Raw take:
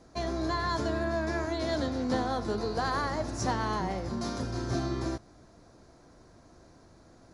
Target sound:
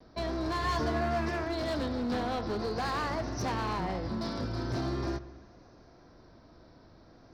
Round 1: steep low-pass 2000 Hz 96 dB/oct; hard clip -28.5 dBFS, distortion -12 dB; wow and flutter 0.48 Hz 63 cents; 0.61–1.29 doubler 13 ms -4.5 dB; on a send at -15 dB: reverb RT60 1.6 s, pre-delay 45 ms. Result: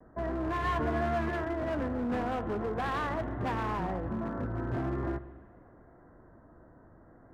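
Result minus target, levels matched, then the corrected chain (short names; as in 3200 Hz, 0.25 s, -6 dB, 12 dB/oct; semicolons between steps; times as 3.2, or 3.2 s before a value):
8000 Hz band -12.0 dB
steep low-pass 5800 Hz 96 dB/oct; hard clip -28.5 dBFS, distortion -12 dB; wow and flutter 0.48 Hz 63 cents; 0.61–1.29 doubler 13 ms -4.5 dB; on a send at -15 dB: reverb RT60 1.6 s, pre-delay 45 ms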